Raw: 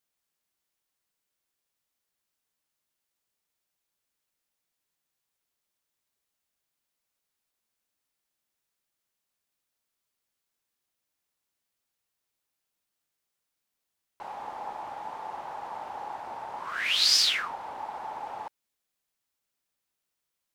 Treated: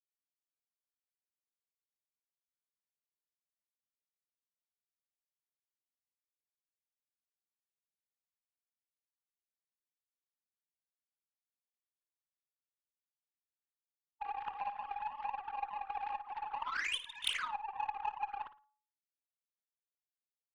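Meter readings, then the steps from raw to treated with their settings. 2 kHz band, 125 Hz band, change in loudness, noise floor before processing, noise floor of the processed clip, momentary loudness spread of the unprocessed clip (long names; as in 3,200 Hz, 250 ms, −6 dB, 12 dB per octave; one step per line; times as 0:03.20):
−7.5 dB, below −10 dB, −11.5 dB, −84 dBFS, below −85 dBFS, 19 LU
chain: three sine waves on the formant tracks
low-pass that shuts in the quiet parts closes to 320 Hz, open at −31.5 dBFS
reverb reduction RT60 1 s
hum removal 283.8 Hz, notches 7
low-pass that shuts in the quiet parts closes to 600 Hz, open at −31.5 dBFS
downward compressor 6 to 1, threshold −32 dBFS, peak gain reduction 8.5 dB
harmonic generator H 3 −8 dB, 4 −38 dB, 5 −19 dB, 7 −30 dB, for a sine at −23 dBFS
flutter between parallel walls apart 9.7 metres, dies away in 0.27 s
level +7.5 dB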